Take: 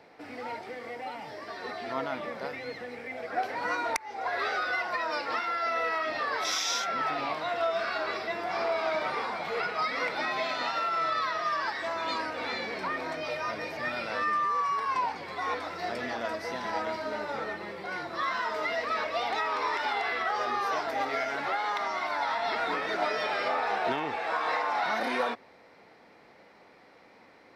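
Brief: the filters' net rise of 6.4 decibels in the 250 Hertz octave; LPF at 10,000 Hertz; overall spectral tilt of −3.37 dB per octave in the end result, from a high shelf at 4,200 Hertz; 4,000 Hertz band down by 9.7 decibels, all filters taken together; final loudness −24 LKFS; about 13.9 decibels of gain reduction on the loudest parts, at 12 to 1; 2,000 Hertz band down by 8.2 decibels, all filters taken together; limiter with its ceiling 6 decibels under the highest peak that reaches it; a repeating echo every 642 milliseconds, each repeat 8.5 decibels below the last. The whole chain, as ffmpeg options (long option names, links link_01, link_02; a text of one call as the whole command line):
ffmpeg -i in.wav -af "lowpass=10000,equalizer=frequency=250:width_type=o:gain=8,equalizer=frequency=2000:width_type=o:gain=-8.5,equalizer=frequency=4000:width_type=o:gain=-8,highshelf=frequency=4200:gain=-3,acompressor=threshold=-39dB:ratio=12,alimiter=level_in=11.5dB:limit=-24dB:level=0:latency=1,volume=-11.5dB,aecho=1:1:642|1284|1926|2568:0.376|0.143|0.0543|0.0206,volume=19.5dB" out.wav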